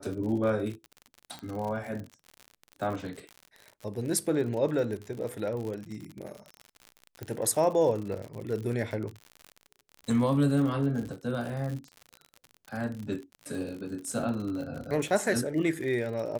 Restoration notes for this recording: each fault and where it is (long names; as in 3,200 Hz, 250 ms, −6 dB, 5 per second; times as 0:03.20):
surface crackle 68 per second −35 dBFS
0:01.39: click −26 dBFS
0:07.23: click −23 dBFS